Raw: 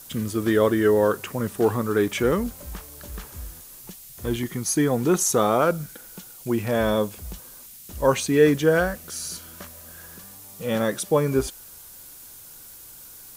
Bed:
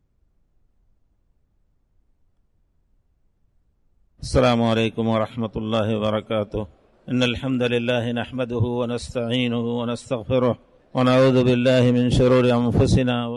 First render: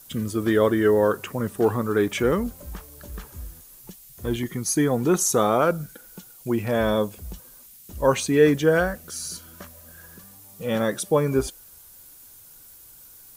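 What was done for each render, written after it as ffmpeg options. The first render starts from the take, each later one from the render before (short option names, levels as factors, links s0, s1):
-af "afftdn=nr=6:nf=-45"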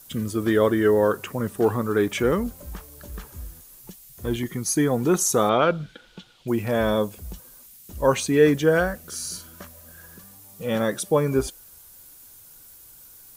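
-filter_complex "[0:a]asettb=1/sr,asplit=3[s0][s1][s2];[s0]atrim=end=5.494[s3];[s1]atrim=start=5.49:end=6.48,asetpts=PTS-STARTPTS,afade=t=in:d=0.004:c=qsin,afade=t=out:st=0.986:d=0.004:c=qsin,lowpass=f=3400:t=q:w=3.2[s4];[s2]atrim=start=6.476[s5];[s3][s4]acrossfade=d=0.004:c1=hsin:c2=qsin[s6];[s6][s5]acrossfade=d=0.004:c1=qsin:c2=hsin,asettb=1/sr,asplit=3[s7][s8][s9];[s7]atrim=end=9.074[s10];[s8]atrim=start=9.07:end=9.48,asetpts=PTS-STARTPTS,afade=t=in:d=0.004:c=qsin,afade=t=out:st=0.406:d=0.004:c=qsin,asplit=2[s11][s12];[s12]adelay=45,volume=0.473[s13];[s11][s13]amix=inputs=2:normalize=0,atrim=end_sample=18081[s14];[s9]atrim=start=9.476[s15];[s10][s14]acrossfade=d=0.004:c1=hsin:c2=qsin[s16];[s16][s15]acrossfade=d=0.004:c1=qsin:c2=hsin"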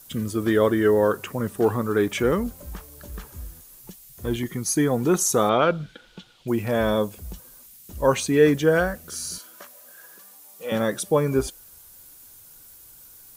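-filter_complex "[0:a]asettb=1/sr,asplit=3[s0][s1][s2];[s0]atrim=end=9.384[s3];[s1]atrim=start=9.38:end=10.72,asetpts=PTS-STARTPTS,afade=t=in:d=0.004:c=qsin,afade=t=out:st=1.336:d=0.004:c=qsin,highpass=450[s4];[s2]atrim=start=10.716[s5];[s3][s4]acrossfade=d=0.004:c1=hsin:c2=qsin[s6];[s6][s5]acrossfade=d=0.004:c1=qsin:c2=hsin"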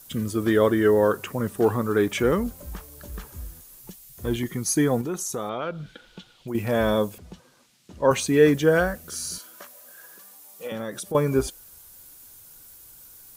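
-filter_complex "[0:a]asettb=1/sr,asplit=3[s0][s1][s2];[s0]atrim=end=5.014[s3];[s1]atrim=start=5.01:end=6.55,asetpts=PTS-STARTPTS,afade=t=in:d=0.004:c=qsin,afade=t=out:st=1.536:d=0.004:c=qsin,acompressor=threshold=0.02:ratio=2:attack=3.2:release=140:knee=1:detection=peak[s4];[s2]atrim=start=6.546[s5];[s3][s4]acrossfade=d=0.004:c1=hsin:c2=qsin[s6];[s6][s5]acrossfade=d=0.004:c1=qsin:c2=hsin,asettb=1/sr,asplit=3[s7][s8][s9];[s7]atrim=end=7.184[s10];[s8]atrim=start=7.18:end=8.11,asetpts=PTS-STARTPTS,afade=t=in:d=0.004:c=qsin,afade=t=out:st=0.926:d=0.004:c=qsin,highpass=120,lowpass=4400[s11];[s9]atrim=start=8.106[s12];[s10][s11]acrossfade=d=0.004:c1=hsin:c2=qsin[s13];[s13][s12]acrossfade=d=0.004:c1=qsin:c2=hsin,asettb=1/sr,asplit=3[s14][s15][s16];[s14]atrim=end=10.674[s17];[s15]atrim=start=10.67:end=11.15,asetpts=PTS-STARTPTS,afade=t=in:d=0.004:c=qsin,afade=t=out:st=0.476:d=0.004:c=qsin,acompressor=threshold=0.0251:ratio=2.5:attack=3.2:release=140:knee=1:detection=peak[s18];[s16]atrim=start=11.146[s19];[s17][s18]acrossfade=d=0.004:c1=hsin:c2=qsin[s20];[s20][s19]acrossfade=d=0.004:c1=qsin:c2=hsin"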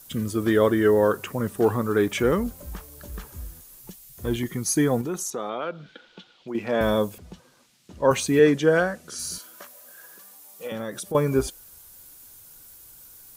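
-filter_complex "[0:a]asettb=1/sr,asplit=3[s0][s1][s2];[s0]atrim=end=5.304[s3];[s1]atrim=start=5.3:end=6.81,asetpts=PTS-STARTPTS,afade=t=in:d=0.004:c=qsin,afade=t=out:st=1.506:d=0.004:c=qsin,acrossover=split=180 6200:gain=0.112 1 0.0891[s4][s5][s6];[s4][s5][s6]amix=inputs=3:normalize=0[s7];[s2]atrim=start=6.806[s8];[s3][s7]acrossfade=d=0.004:c1=hsin:c2=qsin[s9];[s9][s8]acrossfade=d=0.004:c1=qsin:c2=hsin,asettb=1/sr,asplit=3[s10][s11][s12];[s10]atrim=end=8.394[s13];[s11]atrim=start=8.39:end=9.19,asetpts=PTS-STARTPTS,afade=t=in:d=0.004:c=qsin,afade=t=out:st=0.796:d=0.004:c=qsin,highpass=140,lowpass=8000[s14];[s12]atrim=start=9.186[s15];[s13][s14]acrossfade=d=0.004:c1=hsin:c2=qsin[s16];[s16][s15]acrossfade=d=0.004:c1=qsin:c2=hsin"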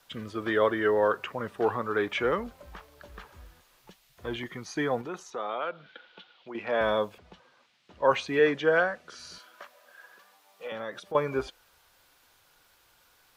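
-filter_complex "[0:a]acrossover=split=500 4200:gain=0.224 1 0.0794[s0][s1][s2];[s0][s1][s2]amix=inputs=3:normalize=0,acrossover=split=6400[s3][s4];[s4]acompressor=threshold=0.00112:ratio=4:attack=1:release=60[s5];[s3][s5]amix=inputs=2:normalize=0"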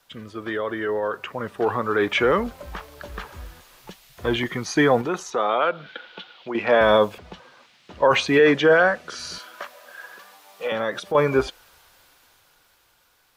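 -af "alimiter=limit=0.112:level=0:latency=1:release=20,dynaudnorm=f=420:g=9:m=3.76"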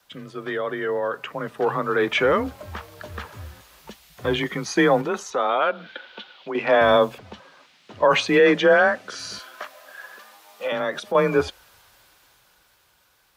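-af "afreqshift=26"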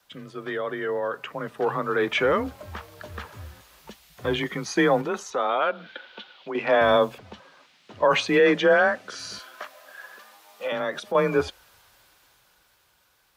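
-af "volume=0.75"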